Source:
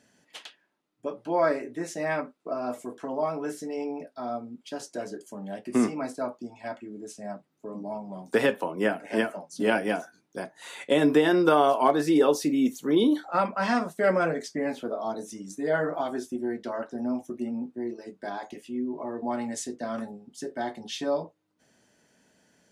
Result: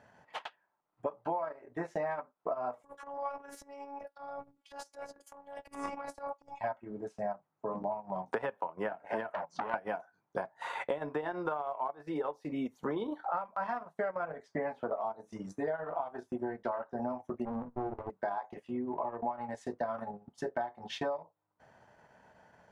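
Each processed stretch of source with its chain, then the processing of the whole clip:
0:02.83–0:06.61: transient designer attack −9 dB, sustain +11 dB + first-order pre-emphasis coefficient 0.8 + phases set to zero 281 Hz
0:09.33–0:09.74: low-pass filter 7,200 Hz 24 dB per octave + compressor whose output falls as the input rises −33 dBFS + saturating transformer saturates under 2,000 Hz
0:17.45–0:18.10: elliptic low-pass filter 1,500 Hz + mains-hum notches 60/120/180/240 Hz + windowed peak hold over 17 samples
whole clip: drawn EQ curve 110 Hz 0 dB, 280 Hz −13 dB, 890 Hz +6 dB, 3,000 Hz −12 dB, 8,100 Hz −22 dB; downward compressor 20 to 1, threshold −39 dBFS; transient designer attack +1 dB, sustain −11 dB; level +7.5 dB

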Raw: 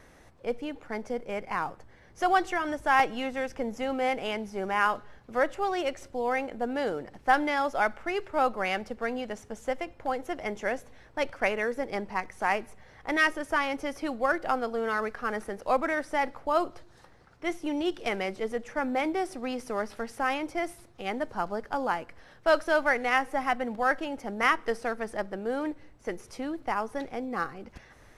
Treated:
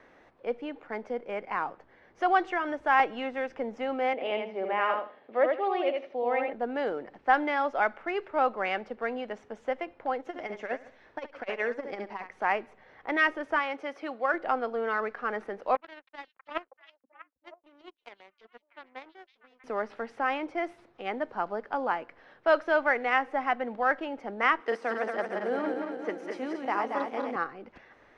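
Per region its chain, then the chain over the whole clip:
0:04.13–0:06.53: loudspeaker in its box 230–4,100 Hz, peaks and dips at 590 Hz +4 dB, 990 Hz −3 dB, 1,500 Hz −8 dB + repeating echo 80 ms, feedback 21%, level −4 dB
0:10.20–0:12.29: parametric band 5,600 Hz +5 dB 1.5 octaves + flutter between parallel walls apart 11.7 metres, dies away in 0.39 s + saturating transformer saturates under 470 Hz
0:13.59–0:14.34: high-pass filter 430 Hz 6 dB per octave + notch filter 940 Hz, Q 23
0:15.75–0:19.64: power curve on the samples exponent 3 + echo through a band-pass that steps 321 ms, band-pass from 4,300 Hz, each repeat −1.4 octaves, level −8.5 dB
0:24.60–0:27.36: feedback delay that plays each chunk backwards 114 ms, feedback 73%, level −4 dB + high-pass filter 170 Hz 24 dB per octave + high-shelf EQ 5,900 Hz +9 dB
whole clip: low-pass filter 5,600 Hz 12 dB per octave; three-way crossover with the lows and the highs turned down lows −15 dB, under 220 Hz, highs −13 dB, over 3,400 Hz

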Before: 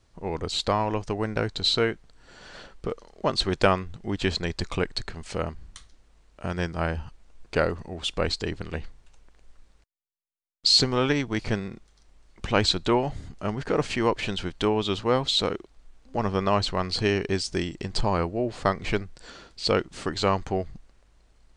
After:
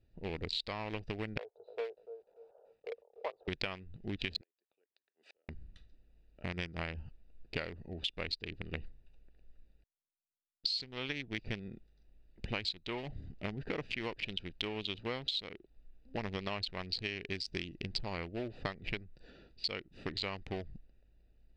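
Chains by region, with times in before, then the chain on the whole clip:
0:01.38–0:03.48: elliptic band-pass filter 450–1,100 Hz + feedback echo at a low word length 293 ms, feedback 35%, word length 9 bits, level −12.5 dB
0:04.41–0:05.49: high-pass filter 380 Hz 24 dB per octave + gate with flip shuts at −25 dBFS, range −41 dB
whole clip: adaptive Wiener filter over 41 samples; flat-topped bell 3,100 Hz +13.5 dB; downward compressor 10 to 1, threshold −28 dBFS; level −6 dB

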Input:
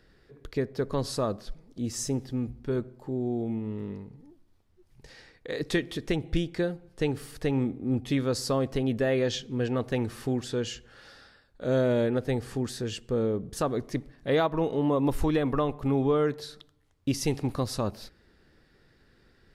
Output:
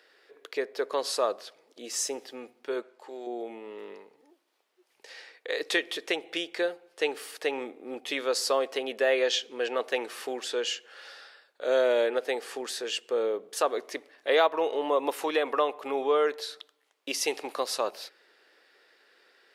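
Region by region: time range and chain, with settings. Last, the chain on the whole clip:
0:02.82–0:03.27: low-pass filter 9,900 Hz + tilt shelving filter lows −7.5 dB, about 860 Hz + one half of a high-frequency compander decoder only
whole clip: high-pass filter 440 Hz 24 dB per octave; parametric band 2,700 Hz +4.5 dB 0.89 octaves; level +3.5 dB

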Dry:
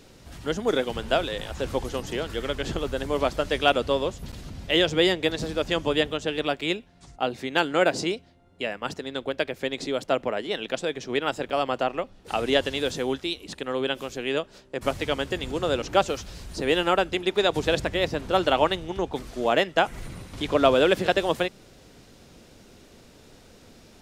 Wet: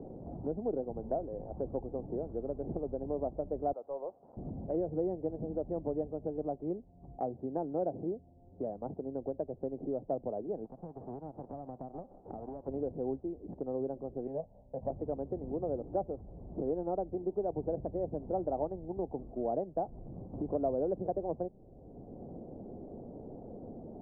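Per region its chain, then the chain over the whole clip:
0:03.73–0:04.37: high-pass filter 920 Hz + leveller curve on the samples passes 1
0:10.64–0:12.67: spectral envelope flattened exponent 0.1 + downward compressor 12 to 1, threshold −31 dBFS
0:14.27–0:14.90: phaser with its sweep stopped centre 1,300 Hz, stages 6 + double-tracking delay 19 ms −11 dB
whole clip: adaptive Wiener filter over 15 samples; Chebyshev low-pass filter 760 Hz, order 4; multiband upward and downward compressor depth 70%; level −8.5 dB

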